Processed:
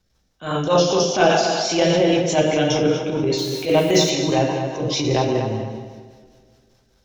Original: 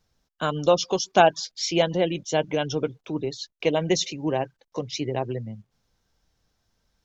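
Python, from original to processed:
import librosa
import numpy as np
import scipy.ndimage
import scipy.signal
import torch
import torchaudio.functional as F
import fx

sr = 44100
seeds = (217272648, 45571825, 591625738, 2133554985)

p1 = fx.rider(x, sr, range_db=4, speed_s=0.5)
p2 = x + (p1 * librosa.db_to_amplitude(0.5))
p3 = fx.rev_double_slope(p2, sr, seeds[0], early_s=0.93, late_s=2.6, knee_db=-18, drr_db=-1.0)
p4 = fx.rotary(p3, sr, hz=5.0)
p5 = fx.dmg_noise_colour(p4, sr, seeds[1], colour='white', level_db=-44.0, at=(3.37, 4.09), fade=0.02)
p6 = fx.transient(p5, sr, attack_db=-10, sustain_db=2)
y = p6 + fx.echo_tape(p6, sr, ms=239, feedback_pct=29, wet_db=-6.5, lp_hz=3400.0, drive_db=2.0, wow_cents=34, dry=0)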